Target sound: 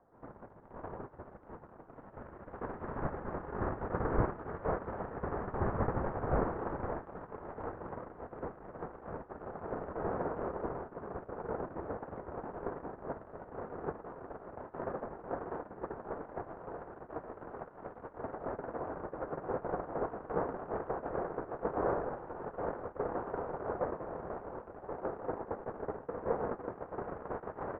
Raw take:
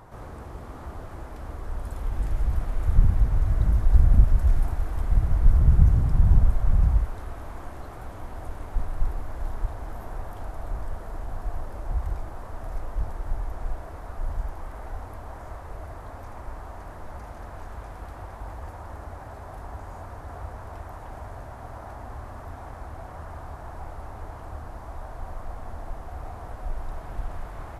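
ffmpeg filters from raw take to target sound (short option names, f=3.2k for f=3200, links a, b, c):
-af "highpass=f=300:t=q:w=0.5412,highpass=f=300:t=q:w=1.307,lowpass=f=2k:t=q:w=0.5176,lowpass=f=2k:t=q:w=0.7071,lowpass=f=2k:t=q:w=1.932,afreqshift=-250,agate=range=-30dB:threshold=-41dB:ratio=16:detection=peak,volume=14dB"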